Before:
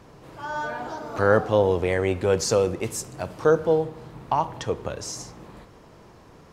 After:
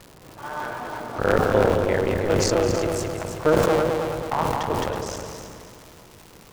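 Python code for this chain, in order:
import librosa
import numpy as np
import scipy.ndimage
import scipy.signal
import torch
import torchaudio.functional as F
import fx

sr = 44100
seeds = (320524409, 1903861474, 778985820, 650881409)

y = fx.cycle_switch(x, sr, every=3, mode='muted')
y = fx.high_shelf(y, sr, hz=4700.0, db=-9.0)
y = fx.dmg_crackle(y, sr, seeds[0], per_s=230.0, level_db=-34.0)
y = fx.echo_heads(y, sr, ms=107, heads='second and third', feedback_pct=44, wet_db=-8)
y = fx.sustainer(y, sr, db_per_s=22.0)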